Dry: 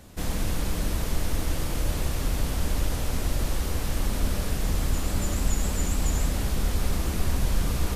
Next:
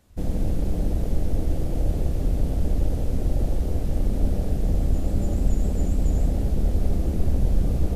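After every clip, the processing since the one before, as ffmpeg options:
-af "afwtdn=0.0282,volume=1.58"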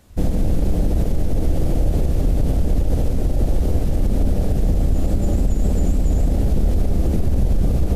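-af "alimiter=limit=0.126:level=0:latency=1:release=60,volume=2.66"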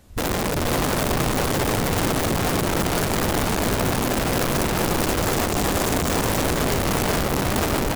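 -af "aeval=exprs='(mod(7.94*val(0)+1,2)-1)/7.94':c=same,aecho=1:1:485:0.631"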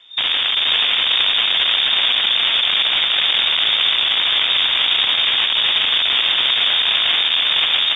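-af "lowpass=f=3100:t=q:w=0.5098,lowpass=f=3100:t=q:w=0.6013,lowpass=f=3100:t=q:w=0.9,lowpass=f=3100:t=q:w=2.563,afreqshift=-3700,volume=1.88" -ar 16000 -c:a pcm_alaw

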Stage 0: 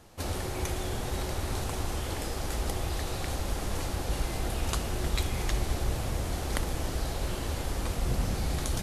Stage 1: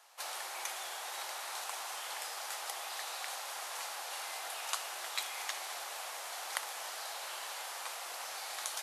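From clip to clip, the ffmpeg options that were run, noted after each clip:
-af "highpass=f=760:w=0.5412,highpass=f=760:w=1.3066,volume=0.841"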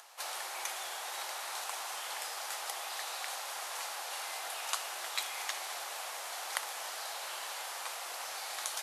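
-af "acompressor=mode=upward:threshold=0.00251:ratio=2.5,volume=1.19"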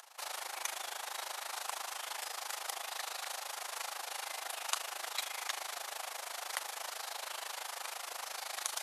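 -af "tremolo=f=26:d=0.824,volume=1.26"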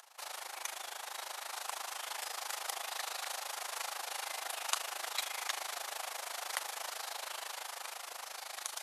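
-af "dynaudnorm=f=390:g=9:m=1.5,volume=0.75"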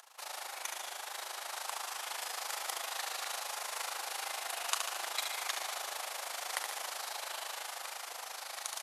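-af "aecho=1:1:71|142|213|284|355|426|497:0.501|0.286|0.163|0.0928|0.0529|0.0302|0.0172"

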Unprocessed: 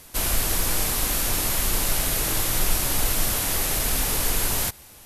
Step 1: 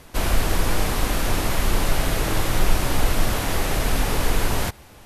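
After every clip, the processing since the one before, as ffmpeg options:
-af "lowpass=f=1800:p=1,volume=2"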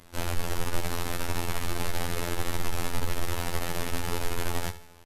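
-af "aeval=exprs='(tanh(6.31*val(0)+0.55)-tanh(0.55))/6.31':c=same,afftfilt=real='hypot(re,im)*cos(PI*b)':imag='0':win_size=2048:overlap=0.75,aecho=1:1:79|158|237|316:0.188|0.0735|0.0287|0.0112,volume=0.841"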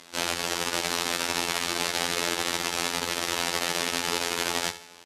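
-af "crystalizer=i=4.5:c=0,highpass=230,lowpass=5100,volume=1.41"

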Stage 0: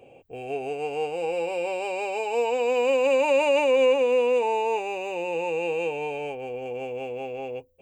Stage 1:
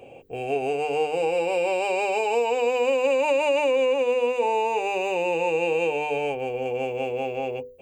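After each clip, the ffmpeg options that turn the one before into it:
-af "acompressor=threshold=0.0562:ratio=6,bandreject=f=50:t=h:w=6,bandreject=f=100:t=h:w=6,bandreject=f=150:t=h:w=6,bandreject=f=200:t=h:w=6,bandreject=f=250:t=h:w=6,bandreject=f=300:t=h:w=6,bandreject=f=350:t=h:w=6,bandreject=f=400:t=h:w=6,bandreject=f=450:t=h:w=6,bandreject=f=500:t=h:w=6,volume=2"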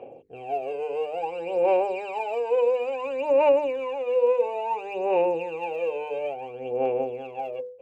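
-af "bandpass=f=650:t=q:w=0.59:csg=0,aphaser=in_gain=1:out_gain=1:delay=2:decay=0.69:speed=0.58:type=sinusoidal,volume=0.562"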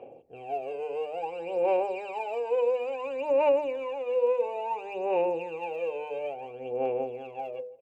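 -filter_complex "[0:a]asplit=2[s0][s1];[s1]adelay=163,lowpass=f=1300:p=1,volume=0.0891,asplit=2[s2][s3];[s3]adelay=163,lowpass=f=1300:p=1,volume=0.35,asplit=2[s4][s5];[s5]adelay=163,lowpass=f=1300:p=1,volume=0.35[s6];[s0][s2][s4][s6]amix=inputs=4:normalize=0,volume=0.631"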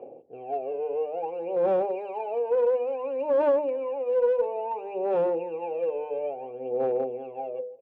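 -af "aeval=exprs='clip(val(0),-1,0.0531)':c=same,bandpass=f=380:t=q:w=0.72:csg=0,volume=1.68"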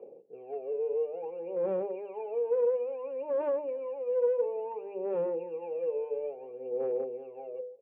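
-af "highpass=150,equalizer=f=190:t=q:w=4:g=7,equalizer=f=270:t=q:w=4:g=-5,equalizer=f=440:t=q:w=4:g=8,equalizer=f=730:t=q:w=4:g=-9,equalizer=f=1500:t=q:w=4:g=-4,lowpass=f=2600:w=0.5412,lowpass=f=2600:w=1.3066,volume=0.422"

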